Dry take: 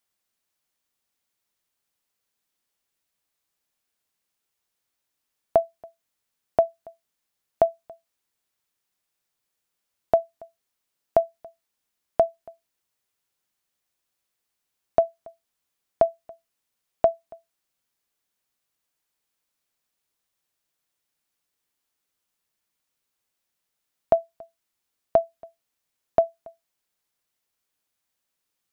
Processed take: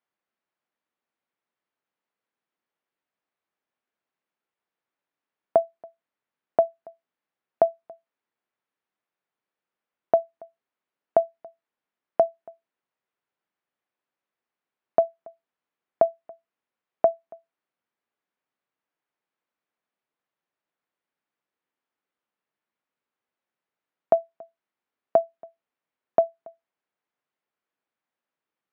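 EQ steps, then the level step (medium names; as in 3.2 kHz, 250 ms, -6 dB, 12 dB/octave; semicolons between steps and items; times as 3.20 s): band-pass 180–2000 Hz; 0.0 dB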